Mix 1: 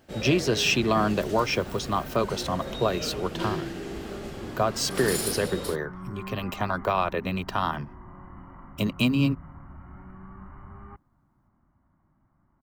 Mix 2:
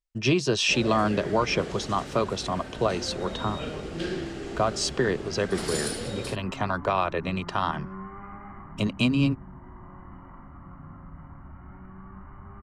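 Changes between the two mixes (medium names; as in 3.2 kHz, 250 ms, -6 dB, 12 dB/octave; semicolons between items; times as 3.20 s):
first sound: entry +0.60 s; second sound: entry +1.75 s; master: add low-pass 9.4 kHz 24 dB/octave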